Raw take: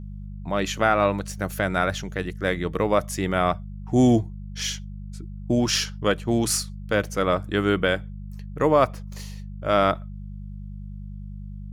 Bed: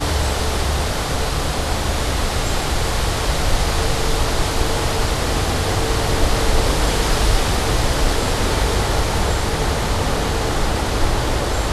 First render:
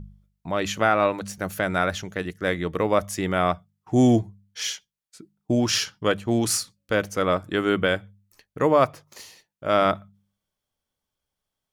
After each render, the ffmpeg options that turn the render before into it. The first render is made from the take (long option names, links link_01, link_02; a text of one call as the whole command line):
ffmpeg -i in.wav -af "bandreject=frequency=50:width_type=h:width=4,bandreject=frequency=100:width_type=h:width=4,bandreject=frequency=150:width_type=h:width=4,bandreject=frequency=200:width_type=h:width=4" out.wav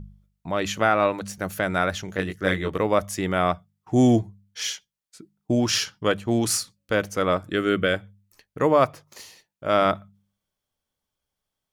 ffmpeg -i in.wav -filter_complex "[0:a]asettb=1/sr,asplit=3[link_01][link_02][link_03];[link_01]atrim=end=2.064[link_04];[link_02]atrim=start=2.06:end=2.78,asetpts=PTS-STARTPTS,afade=type=in:duration=0.004:curve=qsin,afade=type=out:start_time=0.716:duration=0.004:curve=qsin,asplit=2[link_05][link_06];[link_06]adelay=21,volume=-2.5dB[link_07];[link_05][link_07]amix=inputs=2:normalize=0,atrim=end_sample=31752[link_08];[link_03]atrim=start=2.776[link_09];[link_04][link_08]acrossfade=duration=0.004:curve1=hsin:curve2=qsin[link_10];[link_10][link_09]acrossfade=duration=0.004:curve1=qsin:curve2=hsin,asettb=1/sr,asplit=3[link_11][link_12][link_13];[link_11]atrim=end=7.494[link_14];[link_12]atrim=start=7.49:end=7.94,asetpts=PTS-STARTPTS,afade=type=in:duration=0.004:curve=qsin,afade=type=out:start_time=0.446:duration=0.004:curve=qsin,asuperstop=centerf=890:order=4:qfactor=2[link_15];[link_13]atrim=start=7.936[link_16];[link_14][link_15]acrossfade=duration=0.004:curve1=hsin:curve2=qsin[link_17];[link_17][link_16]acrossfade=duration=0.004:curve1=qsin:curve2=hsin" out.wav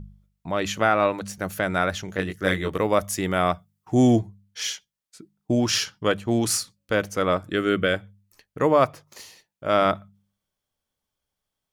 ffmpeg -i in.wav -filter_complex "[0:a]asettb=1/sr,asplit=3[link_01][link_02][link_03];[link_01]atrim=end=2.344[link_04];[link_02]atrim=start=2.34:end=3.94,asetpts=PTS-STARTPTS,afade=type=in:duration=0.004:curve=qsin,afade=type=out:start_time=1.596:duration=0.004:curve=qsin,highshelf=frequency=7000:gain=7[link_05];[link_03]atrim=start=3.936[link_06];[link_04][link_05]acrossfade=duration=0.004:curve1=hsin:curve2=qsin[link_07];[link_07][link_06]acrossfade=duration=0.004:curve1=qsin:curve2=hsin" out.wav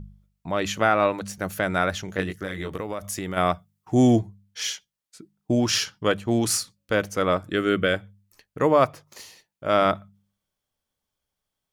ffmpeg -i in.wav -filter_complex "[0:a]asplit=3[link_01][link_02][link_03];[link_01]afade=type=out:start_time=2.36:duration=0.02[link_04];[link_02]acompressor=threshold=-26dB:ratio=10:attack=3.2:release=140:knee=1:detection=peak,afade=type=in:start_time=2.36:duration=0.02,afade=type=out:start_time=3.36:duration=0.02[link_05];[link_03]afade=type=in:start_time=3.36:duration=0.02[link_06];[link_04][link_05][link_06]amix=inputs=3:normalize=0" out.wav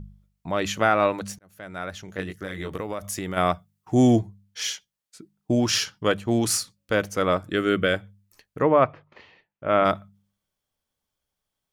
ffmpeg -i in.wav -filter_complex "[0:a]asplit=3[link_01][link_02][link_03];[link_01]afade=type=out:start_time=8.6:duration=0.02[link_04];[link_02]lowpass=frequency=2800:width=0.5412,lowpass=frequency=2800:width=1.3066,afade=type=in:start_time=8.6:duration=0.02,afade=type=out:start_time=9.84:duration=0.02[link_05];[link_03]afade=type=in:start_time=9.84:duration=0.02[link_06];[link_04][link_05][link_06]amix=inputs=3:normalize=0,asplit=2[link_07][link_08];[link_07]atrim=end=1.39,asetpts=PTS-STARTPTS,afade=type=out:start_time=1.386:duration=0.004:curve=hsin[link_09];[link_08]atrim=start=1.39,asetpts=PTS-STARTPTS,afade=type=in:duration=1.38[link_10];[link_09][link_10]concat=n=2:v=0:a=1" out.wav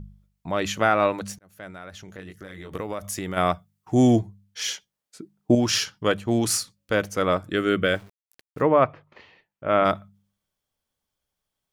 ffmpeg -i in.wav -filter_complex "[0:a]asettb=1/sr,asplit=3[link_01][link_02][link_03];[link_01]atrim=end=1.704[link_04];[link_02]atrim=start=1.7:end=2.73,asetpts=PTS-STARTPTS,afade=type=in:duration=0.004:curve=qsin,afade=type=out:start_time=1.026:duration=0.004:curve=qsin,acompressor=threshold=-39dB:ratio=2.5:attack=3.2:release=140:knee=1:detection=peak[link_05];[link_03]atrim=start=2.726[link_06];[link_04][link_05]acrossfade=duration=0.004:curve1=hsin:curve2=qsin[link_07];[link_07][link_06]acrossfade=duration=0.004:curve1=qsin:curve2=hsin,asettb=1/sr,asplit=3[link_08][link_09][link_10];[link_08]atrim=end=4.684[link_11];[link_09]atrim=start=4.68:end=5.55,asetpts=PTS-STARTPTS,afade=type=in:duration=0.004:curve=qsin,afade=type=out:start_time=0.866:duration=0.004:curve=qsin,equalizer=frequency=420:width=0.39:gain=6.5[link_12];[link_10]atrim=start=5.546[link_13];[link_11][link_12]acrossfade=duration=0.004:curve1=hsin:curve2=qsin[link_14];[link_14][link_13]acrossfade=duration=0.004:curve1=qsin:curve2=hsin,asettb=1/sr,asplit=3[link_15][link_16][link_17];[link_15]atrim=end=7.854[link_18];[link_16]atrim=start=7.85:end=8.66,asetpts=PTS-STARTPTS,afade=type=in:duration=0.004:curve=qsin,afade=type=out:start_time=0.806:duration=0.004:curve=qsin,aeval=exprs='val(0)*gte(abs(val(0)),0.00501)':channel_layout=same[link_19];[link_17]atrim=start=8.656[link_20];[link_18][link_19]acrossfade=duration=0.004:curve1=hsin:curve2=qsin[link_21];[link_21][link_20]acrossfade=duration=0.004:curve1=qsin:curve2=hsin" out.wav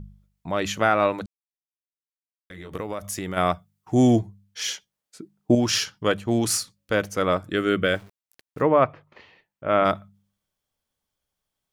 ffmpeg -i in.wav -filter_complex "[0:a]asplit=3[link_01][link_02][link_03];[link_01]atrim=end=1.26,asetpts=PTS-STARTPTS,afade=type=out:start_time=1.256:duration=0.004:curve=hsin[link_04];[link_02]atrim=start=1.26:end=2.5,asetpts=PTS-STARTPTS,volume=0[link_05];[link_03]atrim=start=2.5,asetpts=PTS-STARTPTS,afade=type=in:duration=0.004:curve=hsin[link_06];[link_04][link_05][link_06]concat=n=3:v=0:a=1" out.wav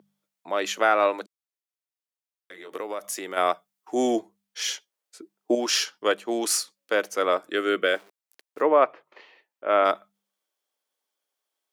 ffmpeg -i in.wav -af "highpass=frequency=330:width=0.5412,highpass=frequency=330:width=1.3066" out.wav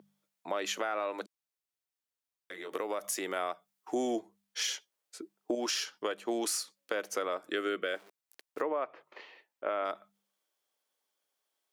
ffmpeg -i in.wav -af "alimiter=limit=-16.5dB:level=0:latency=1:release=185,acompressor=threshold=-31dB:ratio=3" out.wav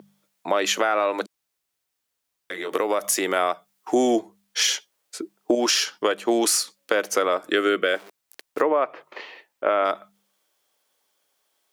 ffmpeg -i in.wav -af "volume=12dB" out.wav